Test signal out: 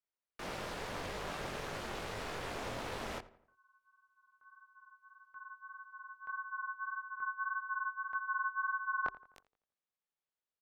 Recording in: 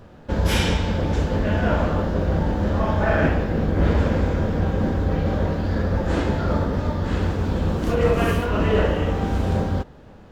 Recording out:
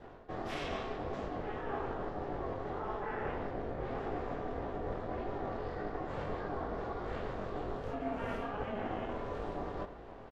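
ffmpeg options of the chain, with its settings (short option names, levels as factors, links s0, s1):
-filter_complex "[0:a]highpass=f=180:w=0.5412,highpass=f=180:w=1.3066,aemphasis=mode=reproduction:type=75fm,bandreject=f=60:t=h:w=6,bandreject=f=120:t=h:w=6,bandreject=f=180:t=h:w=6,bandreject=f=240:t=h:w=6,adynamicequalizer=threshold=0.00631:dfrequency=960:dqfactor=7.9:tfrequency=960:tqfactor=7.9:attack=5:release=100:ratio=0.375:range=2.5:mode=boostabove:tftype=bell,areverse,acompressor=threshold=0.0178:ratio=5,areverse,flanger=delay=19.5:depth=3.2:speed=1.7,aeval=exprs='val(0)*sin(2*PI*210*n/s)':c=same,asplit=2[s0][s1];[s1]adelay=85,lowpass=f=2400:p=1,volume=0.141,asplit=2[s2][s3];[s3]adelay=85,lowpass=f=2400:p=1,volume=0.48,asplit=2[s4][s5];[s5]adelay=85,lowpass=f=2400:p=1,volume=0.48,asplit=2[s6][s7];[s7]adelay=85,lowpass=f=2400:p=1,volume=0.48[s8];[s2][s4][s6][s8]amix=inputs=4:normalize=0[s9];[s0][s9]amix=inputs=2:normalize=0,volume=1.58"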